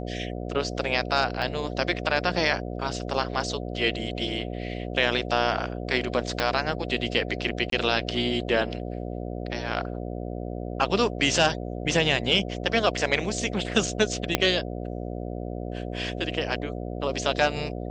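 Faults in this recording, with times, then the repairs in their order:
mains buzz 60 Hz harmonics 12 −33 dBFS
0:01.42: drop-out 3.3 ms
0:06.40: click −10 dBFS
0:07.70–0:07.72: drop-out 23 ms
0:14.35: click −4 dBFS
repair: click removal
hum removal 60 Hz, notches 12
repair the gap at 0:01.42, 3.3 ms
repair the gap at 0:07.70, 23 ms

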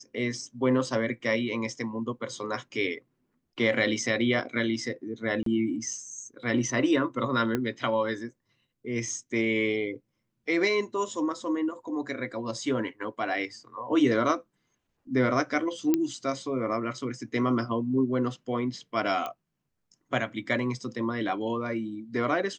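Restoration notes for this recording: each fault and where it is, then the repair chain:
0:05.43–0:05.46: drop-out 33 ms
0:07.55: click −14 dBFS
0:15.94: click −11 dBFS
0:19.26: click −19 dBFS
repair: click removal
repair the gap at 0:05.43, 33 ms

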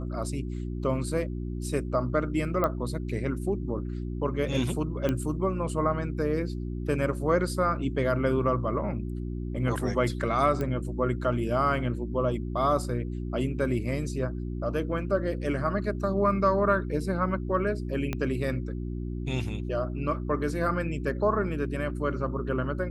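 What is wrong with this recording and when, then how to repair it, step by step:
mains hum 60 Hz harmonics 6 −33 dBFS
0:02.64: click −14 dBFS
0:05.09: click −15 dBFS
0:10.61: click −19 dBFS
0:18.13: click −16 dBFS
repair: click removal
hum removal 60 Hz, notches 6

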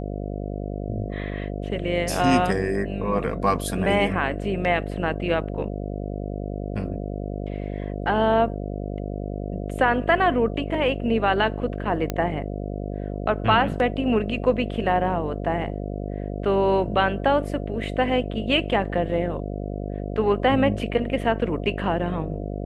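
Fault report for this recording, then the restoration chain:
mains buzz 50 Hz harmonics 14 −30 dBFS
0:12.10: click −11 dBFS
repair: click removal
hum removal 50 Hz, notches 14

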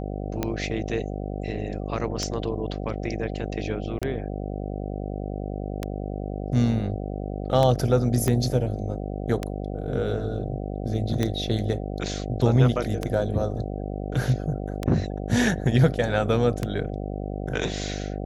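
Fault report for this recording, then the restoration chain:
mains buzz 50 Hz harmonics 15 −31 dBFS
scratch tick 33 1/3 rpm −11 dBFS
0:03.99–0:04.02: drop-out 26 ms
0:08.28: click −11 dBFS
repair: click removal
hum removal 50 Hz, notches 15
repair the gap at 0:03.99, 26 ms

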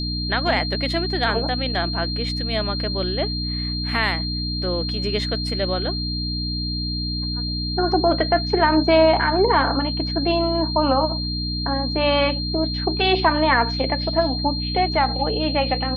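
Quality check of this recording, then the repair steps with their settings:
mains hum 60 Hz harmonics 5 −27 dBFS
whistle 4,200 Hz −27 dBFS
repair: notch filter 4,200 Hz, Q 30
hum removal 60 Hz, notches 5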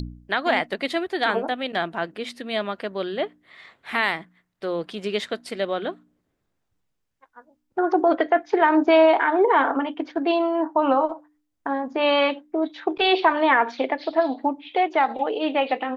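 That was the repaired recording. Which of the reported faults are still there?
none of them is left

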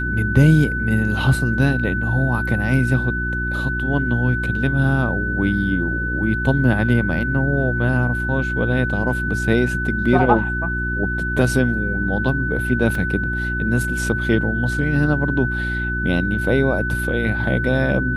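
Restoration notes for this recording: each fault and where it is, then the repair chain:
mains hum 60 Hz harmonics 6 −25 dBFS
whistle 1,500 Hz −23 dBFS
0:12.95: drop-out 2.2 ms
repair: hum removal 60 Hz, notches 6
notch filter 1,500 Hz, Q 30
repair the gap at 0:12.95, 2.2 ms

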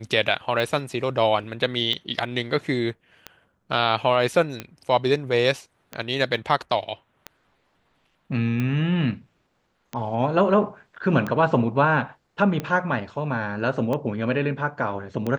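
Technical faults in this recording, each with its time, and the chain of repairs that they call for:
scratch tick 45 rpm −15 dBFS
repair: click removal

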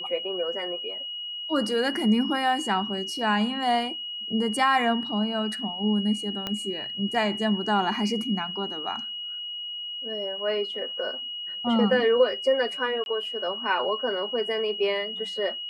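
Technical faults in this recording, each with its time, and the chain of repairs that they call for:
whistle 2,900 Hz −32 dBFS
0:06.47: click −15 dBFS
0:13.04–0:13.06: drop-out 21 ms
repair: click removal
notch filter 2,900 Hz, Q 30
repair the gap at 0:13.04, 21 ms

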